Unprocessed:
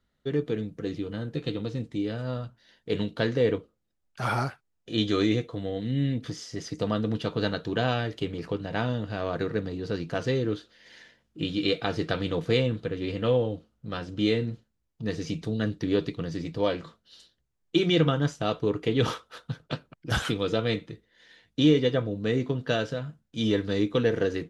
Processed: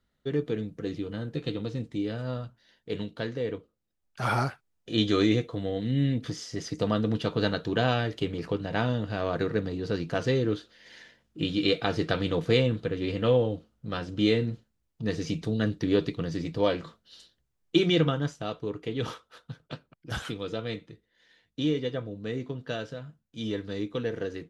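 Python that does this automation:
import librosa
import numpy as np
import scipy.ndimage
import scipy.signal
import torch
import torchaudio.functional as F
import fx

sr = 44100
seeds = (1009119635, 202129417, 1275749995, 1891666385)

y = fx.gain(x, sr, db=fx.line((2.32, -1.0), (3.47, -8.0), (4.33, 1.0), (17.77, 1.0), (18.56, -7.0)))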